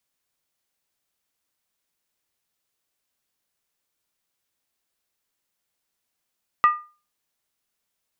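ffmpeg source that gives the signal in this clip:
-f lavfi -i "aevalsrc='0.335*pow(10,-3*t/0.34)*sin(2*PI*1210*t)+0.0944*pow(10,-3*t/0.269)*sin(2*PI*1928.7*t)+0.0266*pow(10,-3*t/0.233)*sin(2*PI*2584.6*t)+0.0075*pow(10,-3*t/0.224)*sin(2*PI*2778.2*t)+0.00211*pow(10,-3*t/0.209)*sin(2*PI*3210.1*t)':d=0.63:s=44100"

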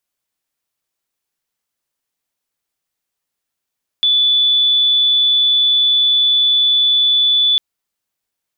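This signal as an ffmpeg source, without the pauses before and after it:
-f lavfi -i "aevalsrc='0.316*sin(2*PI*3470*t)':d=3.55:s=44100"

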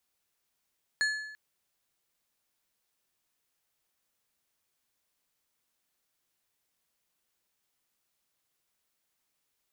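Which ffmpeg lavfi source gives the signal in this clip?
-f lavfi -i "aevalsrc='0.0668*pow(10,-3*t/0.92)*sin(2*PI*1720*t)+0.0299*pow(10,-3*t/0.699)*sin(2*PI*4300*t)+0.0133*pow(10,-3*t/0.607)*sin(2*PI*6880*t)+0.00596*pow(10,-3*t/0.568)*sin(2*PI*8600*t)+0.00266*pow(10,-3*t/0.525)*sin(2*PI*11180*t)':d=0.34:s=44100"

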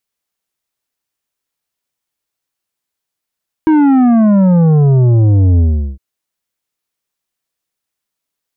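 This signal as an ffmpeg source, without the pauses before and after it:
-f lavfi -i "aevalsrc='0.447*clip((2.31-t)/0.39,0,1)*tanh(2.82*sin(2*PI*320*2.31/log(65/320)*(exp(log(65/320)*t/2.31)-1)))/tanh(2.82)':d=2.31:s=44100"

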